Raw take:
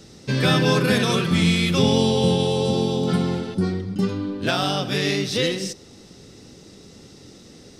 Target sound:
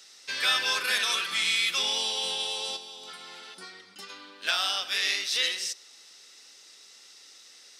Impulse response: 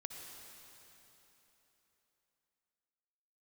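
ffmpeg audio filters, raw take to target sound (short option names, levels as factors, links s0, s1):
-filter_complex "[0:a]highpass=1500,asettb=1/sr,asplit=3[s0][s1][s2];[s0]atrim=end=2.764[s3];[s1]atrim=start=2.76:end=4.1,asetpts=PTS-STARTPTS,afade=t=in:d=0.004:c=qsin,afade=t=out:st=1.336:d=0.004:c=qsin,acompressor=threshold=0.01:ratio=12[s4];[s2]atrim=start=4.096[s5];[s3][s4]acrossfade=d=0.004:c1=hsin:c2=qsin[s6];[s6][s5]acrossfade=d=0.004:c1=qsin:c2=hsin"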